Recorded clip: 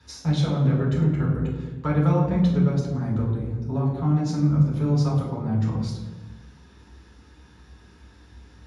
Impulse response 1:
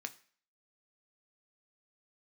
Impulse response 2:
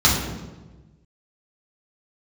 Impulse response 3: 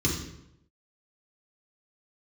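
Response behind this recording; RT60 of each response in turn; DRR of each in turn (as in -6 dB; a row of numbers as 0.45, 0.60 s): 2; not exponential, 1.2 s, 0.80 s; 7.0, -6.5, -4.5 dB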